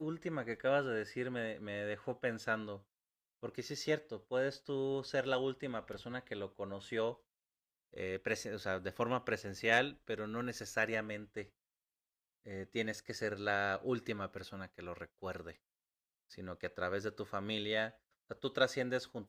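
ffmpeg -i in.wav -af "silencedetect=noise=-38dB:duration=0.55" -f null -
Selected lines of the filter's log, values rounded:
silence_start: 2.75
silence_end: 3.43 | silence_duration: 0.69
silence_start: 7.11
silence_end: 7.98 | silence_duration: 0.87
silence_start: 11.42
silence_end: 12.50 | silence_duration: 1.09
silence_start: 15.51
silence_end: 16.38 | silence_duration: 0.88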